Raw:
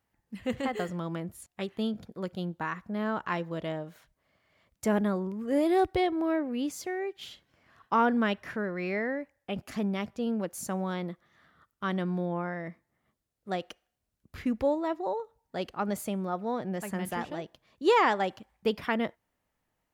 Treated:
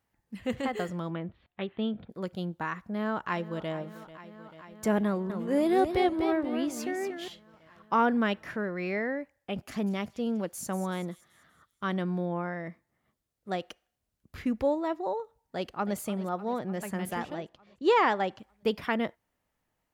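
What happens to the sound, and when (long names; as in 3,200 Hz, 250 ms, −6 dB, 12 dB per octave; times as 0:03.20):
0:01.10–0:02.10: Butterworth low-pass 3,700 Hz 48 dB per octave
0:02.91–0:03.73: delay throw 440 ms, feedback 85%, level −16 dB
0:05.06–0:07.28: feedback echo with a swinging delay time 240 ms, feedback 32%, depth 144 cents, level −7.5 dB
0:09.37–0:11.95: delay with a high-pass on its return 191 ms, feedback 47%, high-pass 5,300 Hz, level −9.5 dB
0:15.56–0:15.98: delay throw 300 ms, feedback 70%, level −15 dB
0:17.34–0:18.39: high-frequency loss of the air 65 metres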